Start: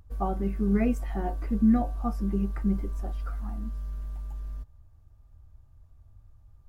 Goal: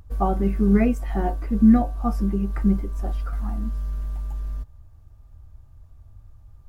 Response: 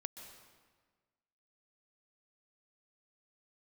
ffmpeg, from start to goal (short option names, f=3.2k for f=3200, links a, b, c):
-filter_complex "[0:a]asettb=1/sr,asplit=3[a][b][c];[a]atrim=end=0.744[d];[b]atrim=start=0.74:end=3.33,asetpts=PTS-STARTPTS,afade=t=in:d=0.004:c=qsin,afade=t=out:st=2.586:d=0.004:c=qsin,tremolo=f=2.1:d=0.38[e];[c]atrim=start=3.326[f];[d][e]acrossfade=d=0.004:c1=hsin:c2=qsin[g];[g][f]acrossfade=d=0.004:c1=qsin:c2=hsin,volume=7dB"